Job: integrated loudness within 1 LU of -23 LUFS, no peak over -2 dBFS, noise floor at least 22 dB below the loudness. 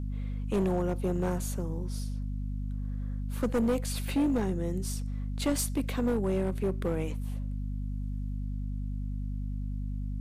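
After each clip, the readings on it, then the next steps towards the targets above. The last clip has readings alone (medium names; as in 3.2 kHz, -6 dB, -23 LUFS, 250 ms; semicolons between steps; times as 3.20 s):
clipped samples 1.9%; clipping level -22.5 dBFS; hum 50 Hz; highest harmonic 250 Hz; hum level -31 dBFS; loudness -32.5 LUFS; peak level -22.5 dBFS; loudness target -23.0 LUFS
-> clip repair -22.5 dBFS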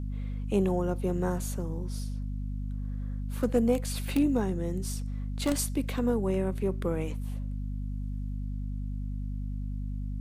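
clipped samples 0.0%; hum 50 Hz; highest harmonic 250 Hz; hum level -31 dBFS
-> de-hum 50 Hz, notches 5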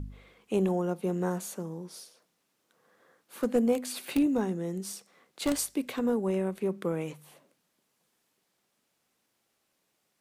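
hum not found; loudness -30.5 LUFS; peak level -14.0 dBFS; loudness target -23.0 LUFS
-> trim +7.5 dB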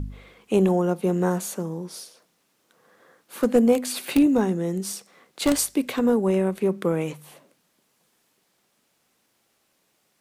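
loudness -23.0 LUFS; peak level -6.5 dBFS; noise floor -69 dBFS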